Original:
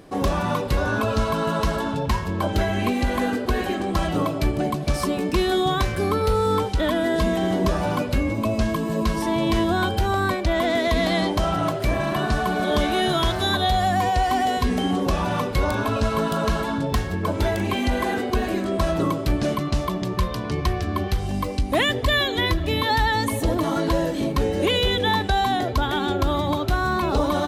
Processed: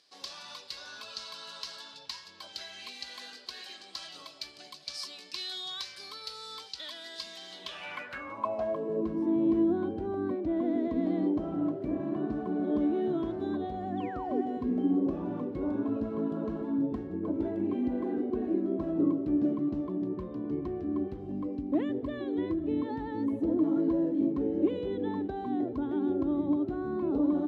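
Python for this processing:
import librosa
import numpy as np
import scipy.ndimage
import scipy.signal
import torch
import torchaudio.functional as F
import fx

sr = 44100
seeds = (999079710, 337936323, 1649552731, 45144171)

y = fx.spec_paint(x, sr, seeds[0], shape='fall', start_s=13.97, length_s=0.44, low_hz=360.0, high_hz=3700.0, level_db=-24.0)
y = fx.filter_sweep_bandpass(y, sr, from_hz=4600.0, to_hz=300.0, start_s=7.49, end_s=9.14, q=3.9)
y = y * librosa.db_to_amplitude(1.0)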